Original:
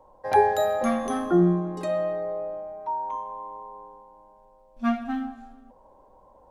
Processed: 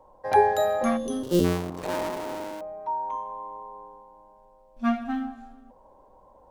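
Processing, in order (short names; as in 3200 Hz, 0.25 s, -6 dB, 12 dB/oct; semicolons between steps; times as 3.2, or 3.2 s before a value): 1.23–2.61 cycle switcher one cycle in 2, muted; 0.97–1.45 spectral gain 610–2700 Hz -15 dB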